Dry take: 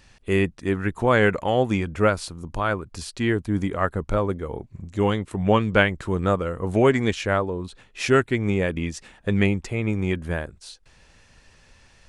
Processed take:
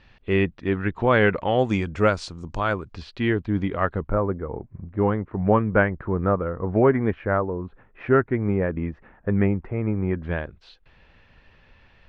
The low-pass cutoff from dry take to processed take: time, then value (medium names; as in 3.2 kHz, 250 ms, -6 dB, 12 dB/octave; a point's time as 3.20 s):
low-pass 24 dB/octave
3.8 kHz
from 1.59 s 6.7 kHz
from 2.94 s 3.8 kHz
from 4.08 s 1.7 kHz
from 10.23 s 3.4 kHz